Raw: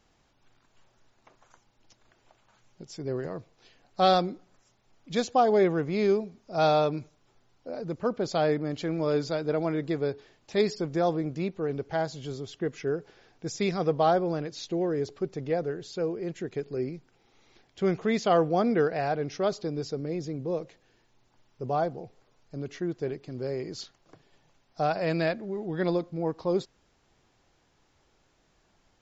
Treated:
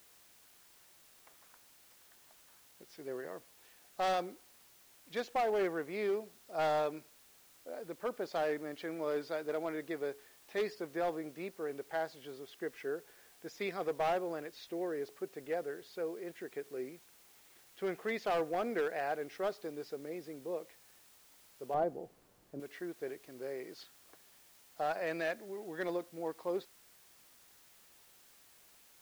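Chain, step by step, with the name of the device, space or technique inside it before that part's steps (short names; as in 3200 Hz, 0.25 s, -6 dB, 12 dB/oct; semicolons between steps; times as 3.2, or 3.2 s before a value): drive-through speaker (BPF 360–3500 Hz; bell 1800 Hz +5 dB 0.58 oct; hard clip -21 dBFS, distortion -14 dB; white noise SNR 23 dB); 21.74–22.6 tilt shelf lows +9.5 dB, about 910 Hz; gain -7 dB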